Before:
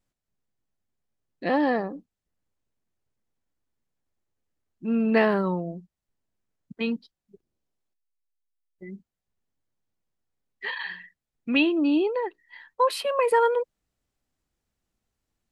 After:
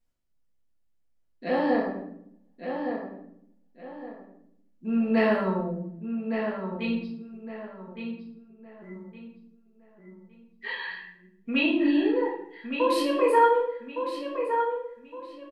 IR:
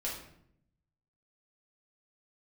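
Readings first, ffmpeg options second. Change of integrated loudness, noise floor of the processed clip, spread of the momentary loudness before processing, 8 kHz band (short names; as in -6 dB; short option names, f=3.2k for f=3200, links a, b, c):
-1.5 dB, -67 dBFS, 20 LU, n/a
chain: -filter_complex "[0:a]asplit=2[a][b];[b]adelay=1163,lowpass=f=3.3k:p=1,volume=-6.5dB,asplit=2[c][d];[d]adelay=1163,lowpass=f=3.3k:p=1,volume=0.32,asplit=2[e][f];[f]adelay=1163,lowpass=f=3.3k:p=1,volume=0.32,asplit=2[g][h];[h]adelay=1163,lowpass=f=3.3k:p=1,volume=0.32[i];[a][c][e][g][i]amix=inputs=5:normalize=0[j];[1:a]atrim=start_sample=2205[k];[j][k]afir=irnorm=-1:irlink=0,volume=-4dB"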